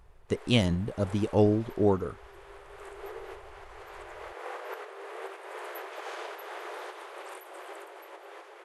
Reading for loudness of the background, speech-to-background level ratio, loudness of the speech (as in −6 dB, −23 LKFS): −43.5 LKFS, 16.0 dB, −27.5 LKFS